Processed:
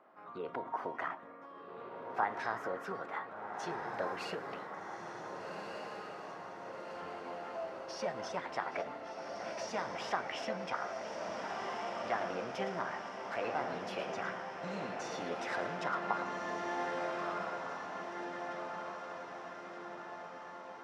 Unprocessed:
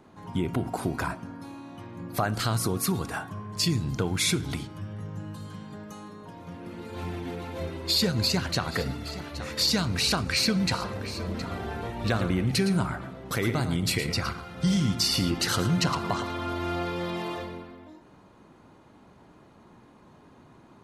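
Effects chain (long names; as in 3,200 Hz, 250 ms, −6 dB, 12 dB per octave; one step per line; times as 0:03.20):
four-pole ladder band-pass 730 Hz, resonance 20%
formants moved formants +4 semitones
feedback delay with all-pass diffusion 1,550 ms, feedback 58%, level −4.5 dB
level +7 dB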